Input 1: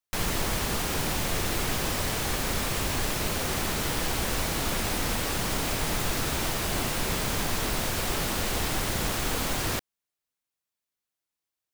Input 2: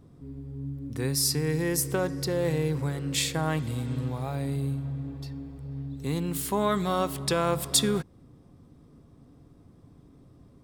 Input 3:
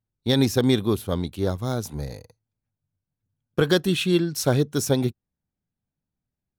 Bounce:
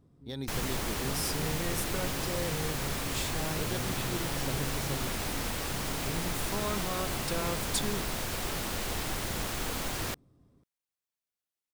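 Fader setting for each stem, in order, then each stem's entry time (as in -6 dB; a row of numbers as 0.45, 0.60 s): -5.5, -9.5, -19.0 dB; 0.35, 0.00, 0.00 s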